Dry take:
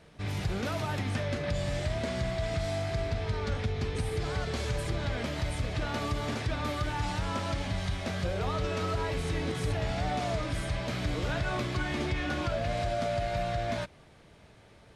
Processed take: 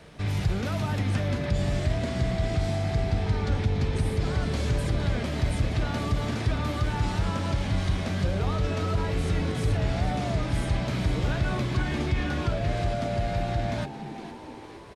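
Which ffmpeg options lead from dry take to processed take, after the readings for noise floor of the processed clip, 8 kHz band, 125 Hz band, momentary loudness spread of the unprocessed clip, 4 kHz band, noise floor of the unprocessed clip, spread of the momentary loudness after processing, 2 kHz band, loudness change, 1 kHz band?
−41 dBFS, +1.5 dB, +6.5 dB, 2 LU, +1.0 dB, −56 dBFS, 2 LU, +1.0 dB, +4.5 dB, +1.0 dB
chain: -filter_complex "[0:a]acrossover=split=190[link_01][link_02];[link_02]acompressor=threshold=-50dB:ratio=1.5[link_03];[link_01][link_03]amix=inputs=2:normalize=0,asplit=2[link_04][link_05];[link_05]asplit=6[link_06][link_07][link_08][link_09][link_10][link_11];[link_06]adelay=461,afreqshift=98,volume=-12dB[link_12];[link_07]adelay=922,afreqshift=196,volume=-17.2dB[link_13];[link_08]adelay=1383,afreqshift=294,volume=-22.4dB[link_14];[link_09]adelay=1844,afreqshift=392,volume=-27.6dB[link_15];[link_10]adelay=2305,afreqshift=490,volume=-32.8dB[link_16];[link_11]adelay=2766,afreqshift=588,volume=-38dB[link_17];[link_12][link_13][link_14][link_15][link_16][link_17]amix=inputs=6:normalize=0[link_18];[link_04][link_18]amix=inputs=2:normalize=0,volume=7dB"

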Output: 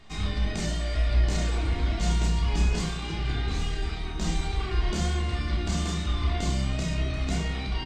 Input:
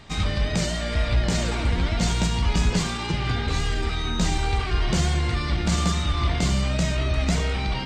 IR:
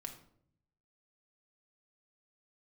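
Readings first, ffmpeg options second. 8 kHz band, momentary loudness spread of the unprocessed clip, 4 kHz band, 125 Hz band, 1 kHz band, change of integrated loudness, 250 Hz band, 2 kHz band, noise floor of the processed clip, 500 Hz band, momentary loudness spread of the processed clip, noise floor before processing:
−6.5 dB, 3 LU, −6.0 dB, −4.0 dB, −6.5 dB, −4.0 dB, −5.5 dB, −6.5 dB, −33 dBFS, −6.0 dB, 5 LU, −28 dBFS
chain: -filter_complex "[0:a]asplit=2[link_01][link_02];[link_02]adelay=31,volume=-7dB[link_03];[link_01][link_03]amix=inputs=2:normalize=0[link_04];[1:a]atrim=start_sample=2205,asetrate=66150,aresample=44100[link_05];[link_04][link_05]afir=irnorm=-1:irlink=0"

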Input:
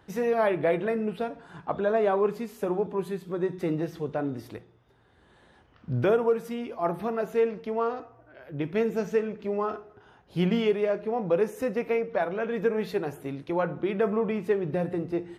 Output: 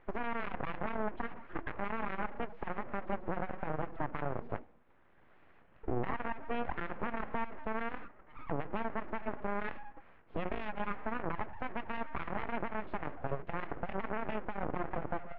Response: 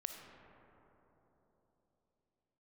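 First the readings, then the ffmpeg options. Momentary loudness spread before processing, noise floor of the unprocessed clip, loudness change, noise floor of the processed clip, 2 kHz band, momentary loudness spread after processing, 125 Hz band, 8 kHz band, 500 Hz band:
10 LU, −60 dBFS, −11.5 dB, −61 dBFS, −4.0 dB, 4 LU, −9.5 dB, can't be measured, −15.5 dB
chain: -af "crystalizer=i=1.5:c=0,bandreject=frequency=380.1:width_type=h:width=4,bandreject=frequency=760.2:width_type=h:width=4,bandreject=frequency=1140.3:width_type=h:width=4,bandreject=frequency=1520.4:width_type=h:width=4,bandreject=frequency=1900.5:width_type=h:width=4,bandreject=frequency=2280.6:width_type=h:width=4,bandreject=frequency=2660.7:width_type=h:width=4,bandreject=frequency=3040.8:width_type=h:width=4,bandreject=frequency=3420.9:width_type=h:width=4,bandreject=frequency=3801:width_type=h:width=4,bandreject=frequency=4181.1:width_type=h:width=4,bandreject=frequency=4561.2:width_type=h:width=4,bandreject=frequency=4941.3:width_type=h:width=4,bandreject=frequency=5321.4:width_type=h:width=4,bandreject=frequency=5701.5:width_type=h:width=4,bandreject=frequency=6081.6:width_type=h:width=4,bandreject=frequency=6461.7:width_type=h:width=4,bandreject=frequency=6841.8:width_type=h:width=4,bandreject=frequency=7221.9:width_type=h:width=4,bandreject=frequency=7602:width_type=h:width=4,bandreject=frequency=7982.1:width_type=h:width=4,bandreject=frequency=8362.2:width_type=h:width=4,bandreject=frequency=8742.3:width_type=h:width=4,bandreject=frequency=9122.4:width_type=h:width=4,bandreject=frequency=9502.5:width_type=h:width=4,bandreject=frequency=9882.6:width_type=h:width=4,afftdn=noise_reduction=19:noise_floor=-35,acompressor=threshold=-37dB:ratio=10,alimiter=level_in=15dB:limit=-24dB:level=0:latency=1:release=126,volume=-15dB,aeval=exprs='abs(val(0))':channel_layout=same,aeval=exprs='0.0112*(cos(1*acos(clip(val(0)/0.0112,-1,1)))-cos(1*PI/2))+0.00282*(cos(4*acos(clip(val(0)/0.0112,-1,1)))-cos(4*PI/2))':channel_layout=same,lowpass=frequency=2300:width=0.5412,lowpass=frequency=2300:width=1.3066,volume=18dB"

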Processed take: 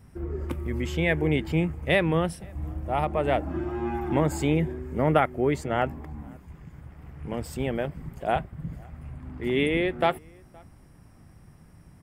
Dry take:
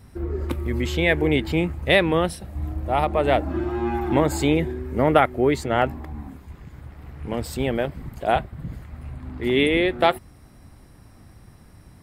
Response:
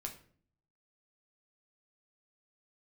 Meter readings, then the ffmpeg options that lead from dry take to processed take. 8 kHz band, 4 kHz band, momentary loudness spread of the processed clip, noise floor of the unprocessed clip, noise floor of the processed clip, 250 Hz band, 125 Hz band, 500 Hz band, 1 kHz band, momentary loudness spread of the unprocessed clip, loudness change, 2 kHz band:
−5.5 dB, −8.0 dB, 18 LU, −49 dBFS, −53 dBFS, −4.0 dB, −2.0 dB, −5.0 dB, −5.0 dB, 18 LU, −4.5 dB, −5.5 dB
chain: -filter_complex "[0:a]equalizer=frequency=160:width_type=o:width=0.33:gain=7,equalizer=frequency=4000:width_type=o:width=0.33:gain=-9,equalizer=frequency=12500:width_type=o:width=0.33:gain=-3,asplit=2[link_01][link_02];[link_02]adelay=519,volume=-28dB,highshelf=frequency=4000:gain=-11.7[link_03];[link_01][link_03]amix=inputs=2:normalize=0,volume=-5dB"

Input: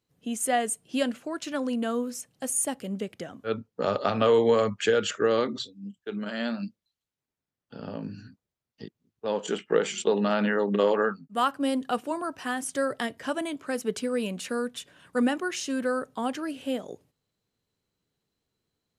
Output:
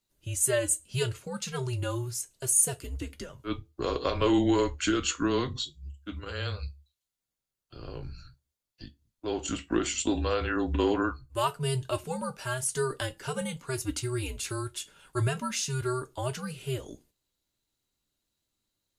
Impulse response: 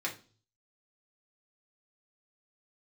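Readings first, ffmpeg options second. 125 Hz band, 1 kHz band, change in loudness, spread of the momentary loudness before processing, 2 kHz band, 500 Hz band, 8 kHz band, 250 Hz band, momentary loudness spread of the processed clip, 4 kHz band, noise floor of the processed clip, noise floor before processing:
+8.5 dB, −4.5 dB, −2.0 dB, 13 LU, −3.5 dB, −5.5 dB, +4.5 dB, −2.5 dB, 14 LU, 0.0 dB, below −85 dBFS, below −85 dBFS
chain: -filter_complex "[0:a]asplit=2[link_01][link_02];[link_02]highshelf=frequency=4600:gain=9.5[link_03];[1:a]atrim=start_sample=2205,asetrate=83790,aresample=44100,highshelf=frequency=3100:gain=9[link_04];[link_03][link_04]afir=irnorm=-1:irlink=0,volume=-5.5dB[link_05];[link_01][link_05]amix=inputs=2:normalize=0,afreqshift=-130,volume=-4.5dB"

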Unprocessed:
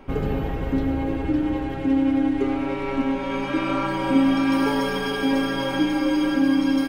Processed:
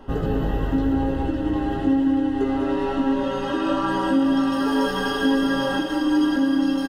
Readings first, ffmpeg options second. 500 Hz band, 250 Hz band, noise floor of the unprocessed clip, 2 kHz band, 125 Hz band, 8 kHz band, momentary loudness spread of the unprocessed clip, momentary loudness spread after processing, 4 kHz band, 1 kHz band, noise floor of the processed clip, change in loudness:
+1.0 dB, +0.5 dB, −28 dBFS, 0.0 dB, +0.5 dB, can't be measured, 6 LU, 4 LU, +0.5 dB, +1.5 dB, −26 dBFS, +0.5 dB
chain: -filter_complex "[0:a]asuperstop=centerf=2300:order=12:qfactor=5.5,acompressor=threshold=-21dB:ratio=6,flanger=delay=17:depth=2.8:speed=0.89,aresample=32000,aresample=44100,asplit=2[link_01][link_02];[link_02]aecho=0:1:196:0.398[link_03];[link_01][link_03]amix=inputs=2:normalize=0,volume=5.5dB"

